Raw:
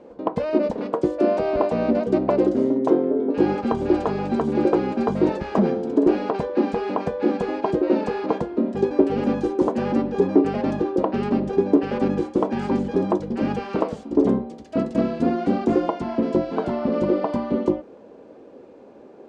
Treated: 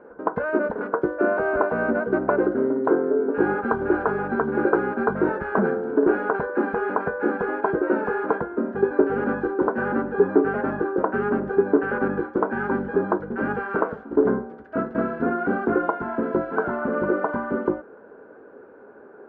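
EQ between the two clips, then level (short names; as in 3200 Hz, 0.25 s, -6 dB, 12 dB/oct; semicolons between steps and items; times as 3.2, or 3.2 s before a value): synth low-pass 1500 Hz, resonance Q 11; bell 420 Hz +8.5 dB 0.21 oct; bell 930 Hz +2.5 dB; -5.0 dB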